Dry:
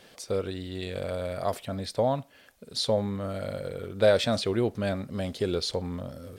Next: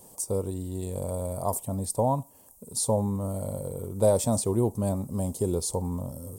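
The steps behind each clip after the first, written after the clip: FFT filter 110 Hz 0 dB, 670 Hz -7 dB, 960 Hz +2 dB, 1.5 kHz -25 dB, 4 kHz -19 dB, 8.2 kHz +10 dB; trim +5 dB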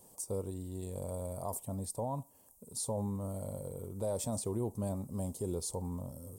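peak limiter -19 dBFS, peak gain reduction 7.5 dB; trim -8 dB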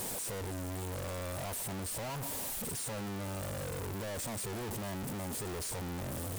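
one-bit comparator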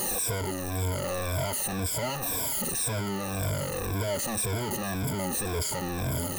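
drifting ripple filter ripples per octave 1.7, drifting -1.9 Hz, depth 17 dB; trim +5.5 dB

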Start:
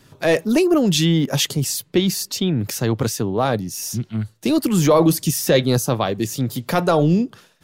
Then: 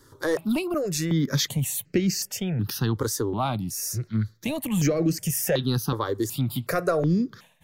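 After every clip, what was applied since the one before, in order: compression, threshold -17 dBFS, peak gain reduction 7.5 dB; stepped phaser 2.7 Hz 690–3500 Hz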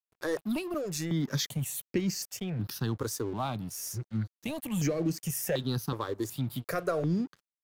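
crossover distortion -43.5 dBFS; trim -6 dB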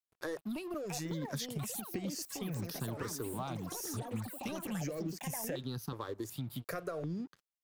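compression, threshold -32 dBFS, peak gain reduction 8.5 dB; ever faster or slower copies 745 ms, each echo +7 st, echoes 3, each echo -6 dB; trim -3.5 dB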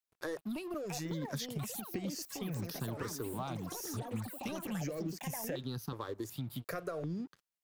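dynamic bell 8.9 kHz, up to -4 dB, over -54 dBFS, Q 1.6

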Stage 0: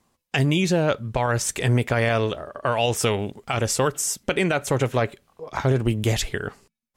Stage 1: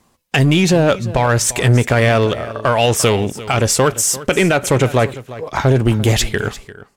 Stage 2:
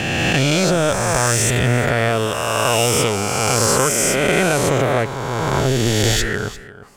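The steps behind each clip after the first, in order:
in parallel at -10 dB: wavefolder -21 dBFS; on the sum: delay 346 ms -16.5 dB; trim +7 dB
reverse spectral sustain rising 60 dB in 2.77 s; reverse; upward compressor, threshold -29 dBFS; reverse; trim -7 dB

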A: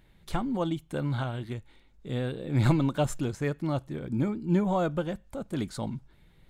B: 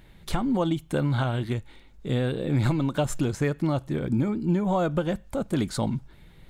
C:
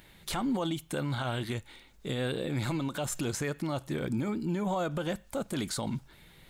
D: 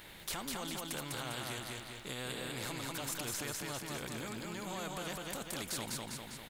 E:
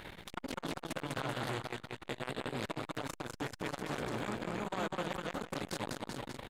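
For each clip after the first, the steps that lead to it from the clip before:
compression 10:1, threshold -28 dBFS, peak gain reduction 11 dB; trim +8 dB
tilt EQ +2 dB/octave; peak limiter -23.5 dBFS, peak gain reduction 9.5 dB
on a send: feedback delay 200 ms, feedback 38%, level -3.5 dB; on the sum: spectrum-flattening compressor 2:1; trim -2 dB
low-pass 1.8 kHz 6 dB/octave; delay 384 ms -10.5 dB; transformer saturation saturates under 1.1 kHz; trim +10 dB

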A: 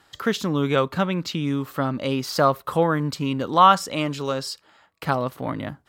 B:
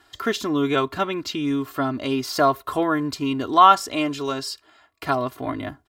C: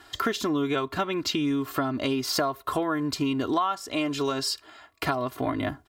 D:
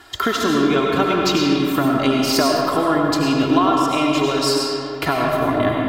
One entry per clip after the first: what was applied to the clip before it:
comb 2.9 ms, depth 75%; trim -1 dB
compression 8:1, threshold -29 dBFS, peak gain reduction 20.5 dB; trim +5.5 dB
reverberation RT60 2.7 s, pre-delay 55 ms, DRR -1.5 dB; trim +6 dB

